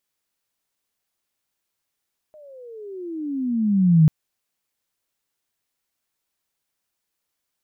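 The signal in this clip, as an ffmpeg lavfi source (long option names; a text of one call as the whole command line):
ffmpeg -f lavfi -i "aevalsrc='pow(10,(-9+34*(t/1.74-1))/20)*sin(2*PI*623*1.74/(-24.5*log(2)/12)*(exp(-24.5*log(2)/12*t/1.74)-1))':duration=1.74:sample_rate=44100" out.wav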